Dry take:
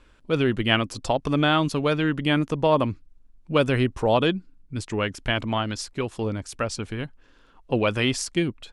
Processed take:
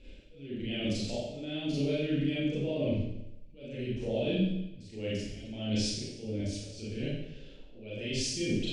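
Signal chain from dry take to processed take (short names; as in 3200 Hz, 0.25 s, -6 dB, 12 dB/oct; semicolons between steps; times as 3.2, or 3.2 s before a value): air absorption 110 m; limiter -16.5 dBFS, peak gain reduction 10.5 dB; reverse; compressor 12:1, threshold -35 dBFS, peak gain reduction 14.5 dB; reverse; auto swell 0.537 s; EQ curve 580 Hz 0 dB, 1100 Hz -28 dB, 2500 Hz +1 dB; Schroeder reverb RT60 0.86 s, combs from 29 ms, DRR -9 dB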